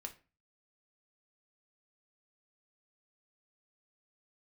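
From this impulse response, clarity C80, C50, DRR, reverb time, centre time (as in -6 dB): 20.5 dB, 15.0 dB, 4.5 dB, 0.35 s, 8 ms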